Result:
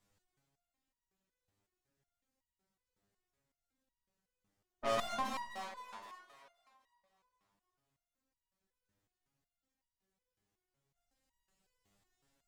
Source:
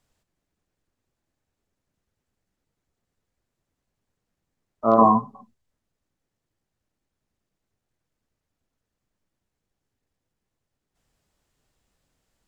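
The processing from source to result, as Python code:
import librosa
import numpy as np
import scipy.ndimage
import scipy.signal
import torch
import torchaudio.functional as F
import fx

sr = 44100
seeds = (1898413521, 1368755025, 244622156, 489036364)

y = fx.tube_stage(x, sr, drive_db=30.0, bias=0.75)
y = fx.echo_split(y, sr, split_hz=360.0, low_ms=137, high_ms=259, feedback_pct=52, wet_db=-5.0)
y = fx.resonator_held(y, sr, hz=5.4, low_hz=100.0, high_hz=960.0)
y = F.gain(torch.from_numpy(y), 10.5).numpy()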